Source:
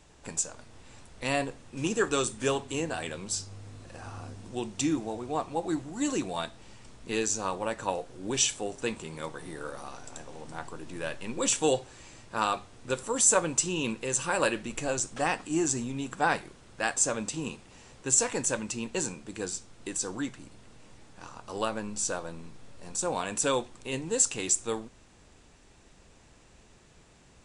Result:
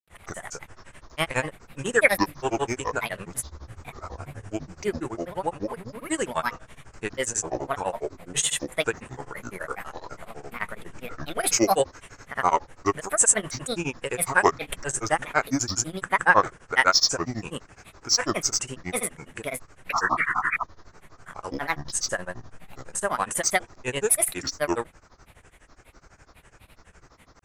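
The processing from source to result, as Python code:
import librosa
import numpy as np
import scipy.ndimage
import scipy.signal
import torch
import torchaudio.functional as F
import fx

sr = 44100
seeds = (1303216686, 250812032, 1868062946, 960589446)

y = fx.spec_paint(x, sr, seeds[0], shape='noise', start_s=19.85, length_s=0.7, low_hz=900.0, high_hz=1900.0, level_db=-34.0)
y = fx.graphic_eq_15(y, sr, hz=(250, 1600, 4000), db=(-8, 8, -12))
y = fx.granulator(y, sr, seeds[1], grain_ms=100.0, per_s=12.0, spray_ms=100.0, spread_st=7)
y = F.gain(torch.from_numpy(y), 7.5).numpy()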